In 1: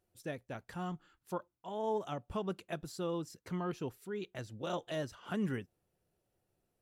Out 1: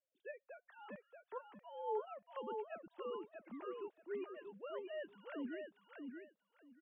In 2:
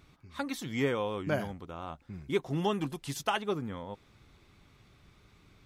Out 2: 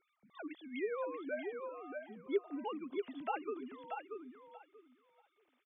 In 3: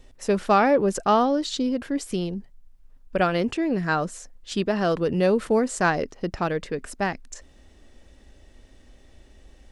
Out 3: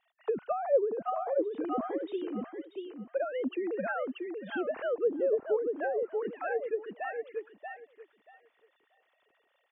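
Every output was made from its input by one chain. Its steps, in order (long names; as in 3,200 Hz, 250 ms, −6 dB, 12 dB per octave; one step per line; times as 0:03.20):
three sine waves on the formant tracks
repeating echo 634 ms, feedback 18%, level −5 dB
treble cut that deepens with the level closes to 680 Hz, closed at −17 dBFS
level −8.5 dB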